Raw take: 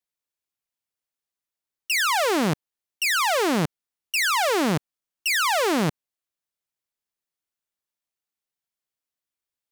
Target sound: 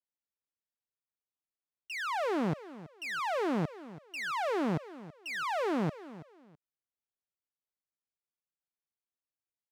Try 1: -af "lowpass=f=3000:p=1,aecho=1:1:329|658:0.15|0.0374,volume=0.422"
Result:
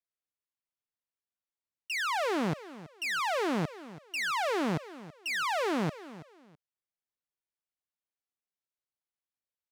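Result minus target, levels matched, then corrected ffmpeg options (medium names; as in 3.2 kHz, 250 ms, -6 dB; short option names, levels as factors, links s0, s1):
4 kHz band +4.5 dB
-af "lowpass=f=1100:p=1,aecho=1:1:329|658:0.15|0.0374,volume=0.422"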